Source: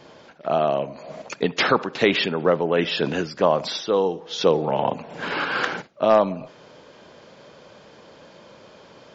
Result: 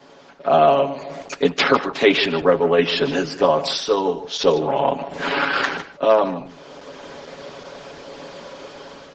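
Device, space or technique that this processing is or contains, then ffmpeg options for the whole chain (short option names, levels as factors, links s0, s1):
video call: -filter_complex "[0:a]aecho=1:1:7.2:0.91,aecho=1:1:152:0.188,asplit=3[s0][s1][s2];[s0]afade=t=out:st=3.15:d=0.02[s3];[s1]adynamicequalizer=threshold=0.00891:dfrequency=6600:dqfactor=0.88:tfrequency=6600:tqfactor=0.88:attack=5:release=100:ratio=0.375:range=1.5:mode=boostabove:tftype=bell,afade=t=in:st=3.15:d=0.02,afade=t=out:st=4.81:d=0.02[s4];[s2]afade=t=in:st=4.81:d=0.02[s5];[s3][s4][s5]amix=inputs=3:normalize=0,highpass=f=170:w=0.5412,highpass=f=170:w=1.3066,dynaudnorm=f=130:g=7:m=3.16,volume=0.891" -ar 48000 -c:a libopus -b:a 12k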